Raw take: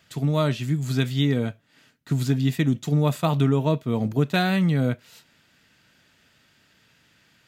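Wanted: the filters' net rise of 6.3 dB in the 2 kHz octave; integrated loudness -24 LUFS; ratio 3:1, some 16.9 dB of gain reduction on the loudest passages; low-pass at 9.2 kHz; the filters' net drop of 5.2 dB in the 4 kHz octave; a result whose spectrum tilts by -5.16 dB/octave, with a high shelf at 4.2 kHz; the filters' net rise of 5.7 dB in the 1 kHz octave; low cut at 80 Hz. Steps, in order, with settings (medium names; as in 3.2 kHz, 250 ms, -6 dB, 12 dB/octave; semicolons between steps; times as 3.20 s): high-pass 80 Hz; low-pass 9.2 kHz; peaking EQ 1 kHz +6 dB; peaking EQ 2 kHz +9 dB; peaking EQ 4 kHz -7 dB; treble shelf 4.2 kHz -6 dB; compression 3:1, threshold -39 dBFS; trim +14 dB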